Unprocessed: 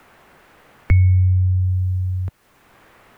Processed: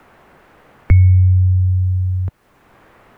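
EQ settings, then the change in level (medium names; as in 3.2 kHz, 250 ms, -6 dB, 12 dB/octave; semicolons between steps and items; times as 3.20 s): treble shelf 2.1 kHz -8.5 dB; +4.0 dB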